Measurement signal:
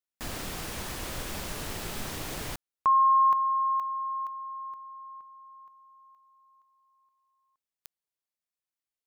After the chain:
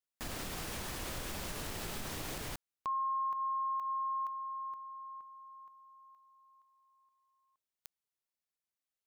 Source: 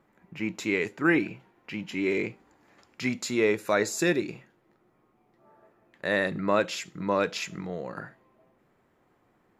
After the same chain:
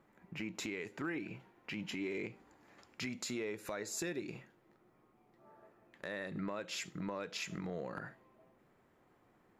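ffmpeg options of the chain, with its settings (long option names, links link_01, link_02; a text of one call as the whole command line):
ffmpeg -i in.wav -af "acompressor=threshold=-30dB:ratio=8:attack=0.34:release=302:knee=1:detection=peak,volume=-2.5dB" out.wav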